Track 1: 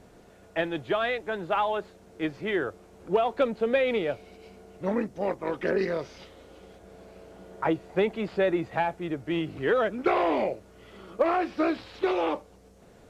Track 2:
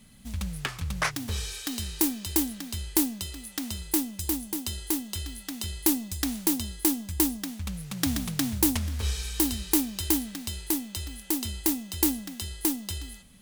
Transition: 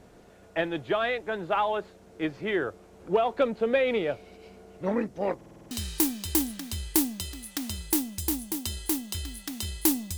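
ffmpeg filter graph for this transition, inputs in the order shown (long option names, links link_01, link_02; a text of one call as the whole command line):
ffmpeg -i cue0.wav -i cue1.wav -filter_complex "[0:a]apad=whole_dur=10.17,atrim=end=10.17,asplit=7[link_01][link_02][link_03][link_04][link_05][link_06][link_07];[link_01]atrim=end=5.412[link_08];[link_02]atrim=start=5.358:end=5.412[link_09];[link_03]atrim=start=5.358:end=5.412[link_10];[link_04]atrim=start=5.358:end=5.412[link_11];[link_05]atrim=start=5.358:end=5.412[link_12];[link_06]atrim=start=5.358:end=5.412[link_13];[link_07]atrim=start=5.358:end=5.412[link_14];[1:a]atrim=start=1.718:end=6.18[link_15];[link_08][link_09]acrossfade=duration=0.004:curve1=hsin:curve2=hsin[link_16];[link_16][link_10]acrossfade=duration=0.004:curve1=hsin:curve2=hsin[link_17];[link_17][link_11]acrossfade=duration=0.004:curve1=hsin:curve2=hsin[link_18];[link_18][link_12]acrossfade=duration=0.004:curve1=hsin:curve2=hsin[link_19];[link_19][link_13]acrossfade=duration=0.004:curve1=hsin:curve2=hsin[link_20];[link_20][link_14]acrossfade=duration=0.004:curve1=hsin:curve2=hsin[link_21];[link_21][link_15]acrossfade=duration=0.004:curve1=hsin:curve2=hsin" out.wav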